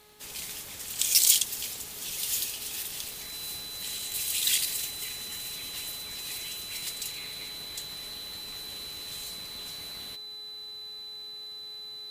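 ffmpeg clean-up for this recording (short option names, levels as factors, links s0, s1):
-af "adeclick=t=4,bandreject=f=421.2:t=h:w=4,bandreject=f=842.4:t=h:w=4,bandreject=f=1263.6:t=h:w=4,bandreject=f=1684.8:t=h:w=4,bandreject=f=2106:t=h:w=4,bandreject=f=4000:w=30"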